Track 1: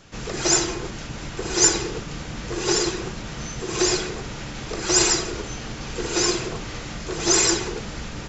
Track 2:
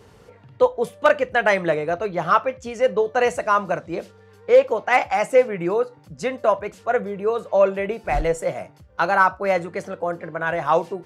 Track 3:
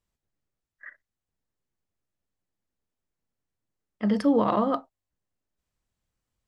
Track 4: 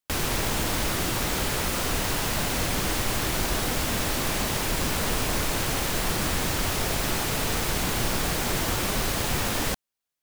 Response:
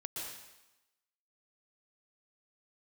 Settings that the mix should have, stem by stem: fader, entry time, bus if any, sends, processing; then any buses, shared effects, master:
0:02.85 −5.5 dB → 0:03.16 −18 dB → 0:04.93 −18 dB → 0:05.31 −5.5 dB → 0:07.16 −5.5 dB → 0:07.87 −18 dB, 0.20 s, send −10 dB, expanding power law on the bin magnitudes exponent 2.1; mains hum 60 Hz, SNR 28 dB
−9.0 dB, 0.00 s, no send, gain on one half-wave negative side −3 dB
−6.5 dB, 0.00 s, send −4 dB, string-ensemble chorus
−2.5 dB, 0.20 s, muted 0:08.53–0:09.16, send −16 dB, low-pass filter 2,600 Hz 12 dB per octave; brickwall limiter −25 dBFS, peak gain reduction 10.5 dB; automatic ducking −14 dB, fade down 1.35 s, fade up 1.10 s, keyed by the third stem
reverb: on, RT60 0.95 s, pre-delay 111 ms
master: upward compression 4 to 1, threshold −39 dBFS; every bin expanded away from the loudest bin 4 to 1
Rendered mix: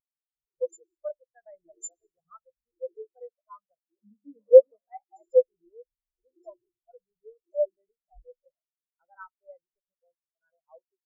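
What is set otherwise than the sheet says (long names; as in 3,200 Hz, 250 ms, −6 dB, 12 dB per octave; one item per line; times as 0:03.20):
stem 2 −9.0 dB → 0.0 dB
stem 3: missing string-ensemble chorus
reverb return +7.5 dB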